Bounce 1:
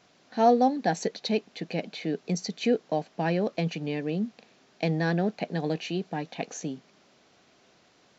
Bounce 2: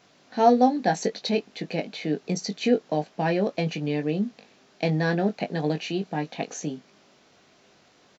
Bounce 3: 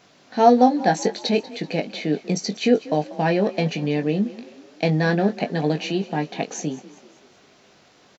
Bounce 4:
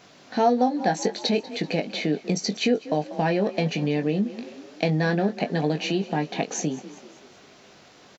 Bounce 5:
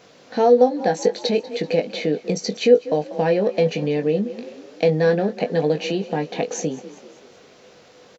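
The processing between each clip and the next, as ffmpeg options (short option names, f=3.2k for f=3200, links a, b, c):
-filter_complex "[0:a]asplit=2[a][b];[b]adelay=20,volume=-7dB[c];[a][c]amix=inputs=2:normalize=0,volume=2dB"
-filter_complex "[0:a]asplit=5[a][b][c][d][e];[b]adelay=191,afreqshift=34,volume=-18dB[f];[c]adelay=382,afreqshift=68,volume=-24.2dB[g];[d]adelay=573,afreqshift=102,volume=-30.4dB[h];[e]adelay=764,afreqshift=136,volume=-36.6dB[i];[a][f][g][h][i]amix=inputs=5:normalize=0,volume=4dB"
-af "acompressor=threshold=-27dB:ratio=2,volume=3dB"
-af "equalizer=f=490:w=5.8:g=13"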